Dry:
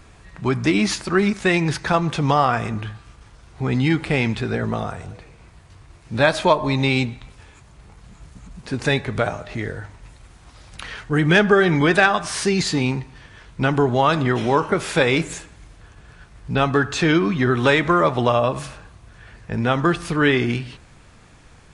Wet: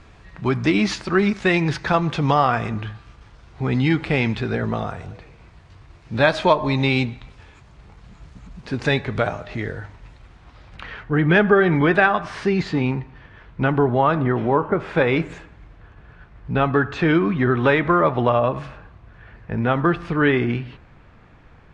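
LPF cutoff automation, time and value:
9.83 s 4800 Hz
11.03 s 2300 Hz
13.64 s 2300 Hz
14.64 s 1200 Hz
15.12 s 2300 Hz

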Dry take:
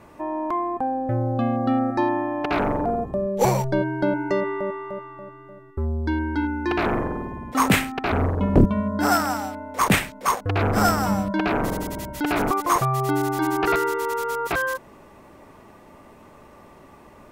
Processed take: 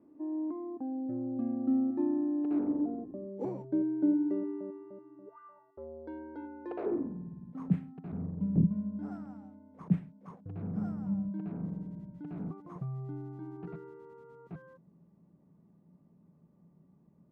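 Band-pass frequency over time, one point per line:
band-pass, Q 7.3
5.25 s 290 Hz
5.39 s 1400 Hz
5.84 s 520 Hz
6.78 s 520 Hz
7.19 s 170 Hz

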